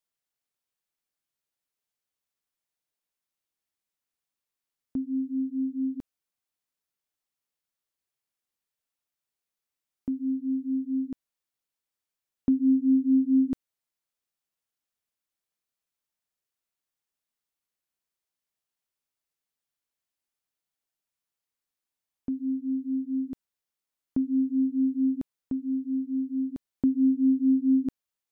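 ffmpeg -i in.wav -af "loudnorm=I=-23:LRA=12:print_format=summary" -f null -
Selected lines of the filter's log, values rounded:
Input Integrated:    -27.1 LUFS
Input True Peak:     -15.6 dBTP
Input LRA:             8.6 LU
Input Threshold:     -37.3 LUFS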